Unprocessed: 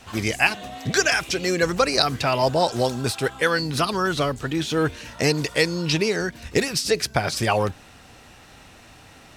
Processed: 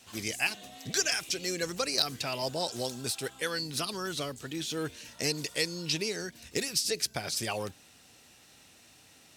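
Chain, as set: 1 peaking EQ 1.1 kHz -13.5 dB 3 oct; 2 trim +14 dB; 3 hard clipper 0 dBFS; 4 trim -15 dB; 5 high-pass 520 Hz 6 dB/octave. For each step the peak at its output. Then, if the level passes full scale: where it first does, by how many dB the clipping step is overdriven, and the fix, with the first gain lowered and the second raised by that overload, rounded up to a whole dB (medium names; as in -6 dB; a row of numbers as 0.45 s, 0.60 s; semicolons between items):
-7.5 dBFS, +6.5 dBFS, 0.0 dBFS, -15.0 dBFS, -12.5 dBFS; step 2, 6.5 dB; step 2 +7 dB, step 4 -8 dB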